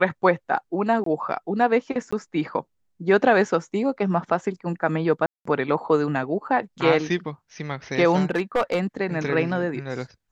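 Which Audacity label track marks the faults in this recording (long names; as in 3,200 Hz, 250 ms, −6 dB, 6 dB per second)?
1.040000	1.060000	drop-out 23 ms
2.110000	2.120000	drop-out 15 ms
5.260000	5.450000	drop-out 194 ms
8.300000	8.800000	clipping −16 dBFS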